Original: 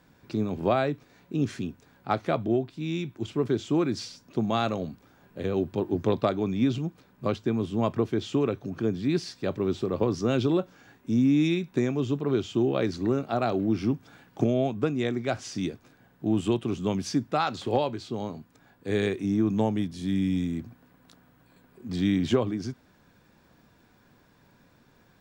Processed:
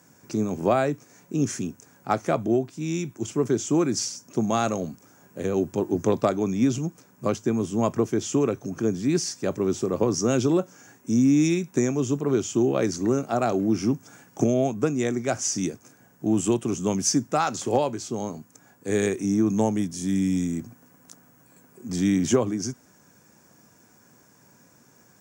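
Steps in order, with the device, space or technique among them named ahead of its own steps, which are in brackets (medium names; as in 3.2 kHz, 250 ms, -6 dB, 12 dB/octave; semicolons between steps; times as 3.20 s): budget condenser microphone (high-pass 110 Hz; resonant high shelf 5 kHz +8.5 dB, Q 3); trim +3 dB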